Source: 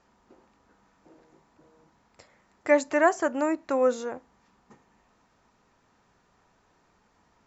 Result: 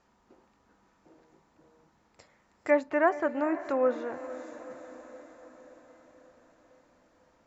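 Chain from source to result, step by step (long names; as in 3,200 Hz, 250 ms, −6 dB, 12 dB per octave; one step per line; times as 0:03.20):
feedback delay with all-pass diffusion 488 ms, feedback 59%, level −14.5 dB
treble cut that deepens with the level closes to 2,500 Hz, closed at −22.5 dBFS
level −3 dB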